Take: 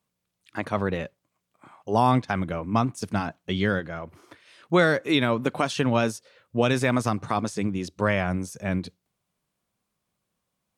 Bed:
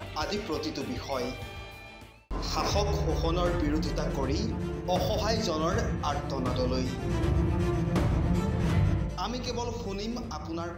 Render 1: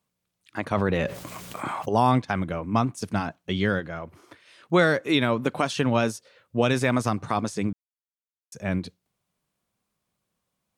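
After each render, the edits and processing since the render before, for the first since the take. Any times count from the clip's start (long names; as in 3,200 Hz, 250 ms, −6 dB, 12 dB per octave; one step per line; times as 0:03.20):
0:00.71–0:01.89: envelope flattener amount 70%
0:07.73–0:08.52: silence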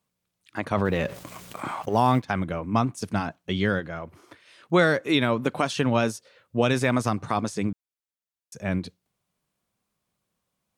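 0:00.85–0:02.25: mu-law and A-law mismatch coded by A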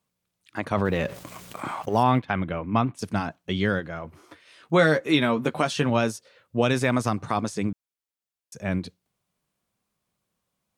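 0:02.03–0:02.99: high shelf with overshoot 4,300 Hz −10.5 dB, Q 1.5
0:04.03–0:05.90: double-tracking delay 13 ms −7 dB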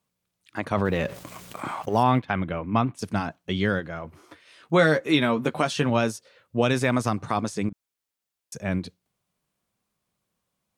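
0:07.69–0:08.58: compressor whose output falls as the input rises −38 dBFS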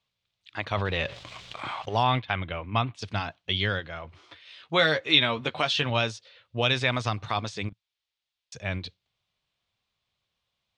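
drawn EQ curve 110 Hz 0 dB, 180 Hz −11 dB, 280 Hz −10 dB, 690 Hz −3 dB, 1,500 Hz −2 dB, 3,600 Hz +9 dB, 8,400 Hz −12 dB, 12,000 Hz −30 dB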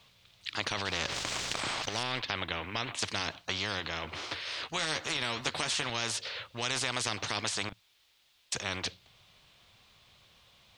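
brickwall limiter −14 dBFS, peak gain reduction 8.5 dB
every bin compressed towards the loudest bin 4 to 1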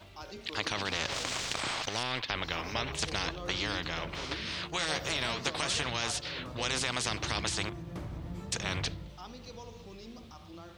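mix in bed −14 dB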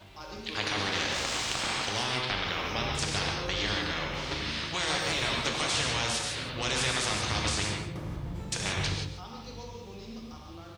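single-tap delay 142 ms −11.5 dB
reverb whose tail is shaped and stops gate 200 ms flat, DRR 0 dB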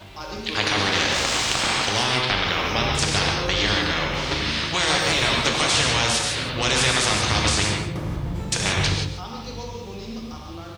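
level +9 dB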